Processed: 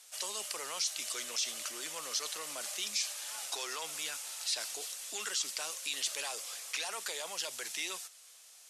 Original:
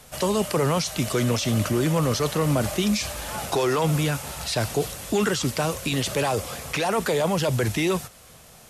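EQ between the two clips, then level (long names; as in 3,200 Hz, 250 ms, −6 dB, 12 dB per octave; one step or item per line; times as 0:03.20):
band-pass filter 310–7,400 Hz
first difference
0.0 dB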